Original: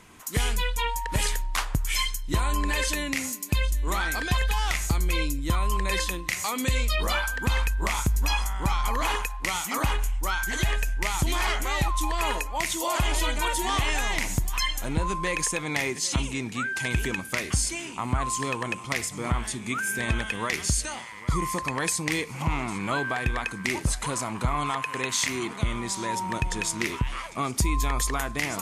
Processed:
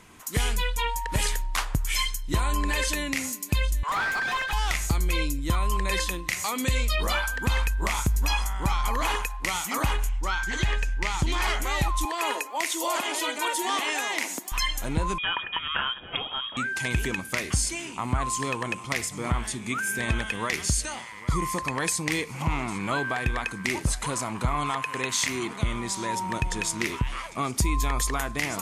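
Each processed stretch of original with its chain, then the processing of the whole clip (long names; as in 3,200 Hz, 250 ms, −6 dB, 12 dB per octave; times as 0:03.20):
0:03.83–0:04.53: inverse Chebyshev high-pass filter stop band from 290 Hz, stop band 50 dB + mid-hump overdrive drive 23 dB, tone 1,100 Hz, clips at −16 dBFS
0:10.09–0:11.42: low-pass filter 6,200 Hz + notch filter 660 Hz, Q 8.2
0:12.05–0:14.52: Butterworth high-pass 250 Hz + bit-depth reduction 12 bits, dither triangular
0:15.18–0:16.57: high-pass filter 170 Hz 24 dB per octave + voice inversion scrambler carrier 3,500 Hz
whole clip: no processing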